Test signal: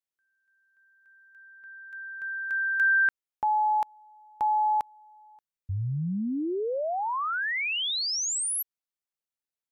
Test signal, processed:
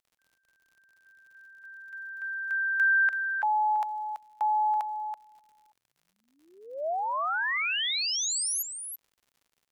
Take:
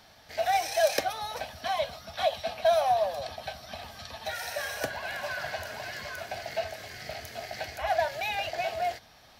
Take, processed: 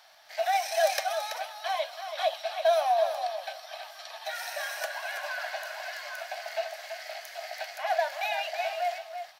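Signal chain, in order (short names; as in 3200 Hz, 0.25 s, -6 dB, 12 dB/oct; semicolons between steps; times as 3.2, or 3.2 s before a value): Chebyshev high-pass 630 Hz, order 4; echo 0.331 s -8.5 dB; crackle 97/s -53 dBFS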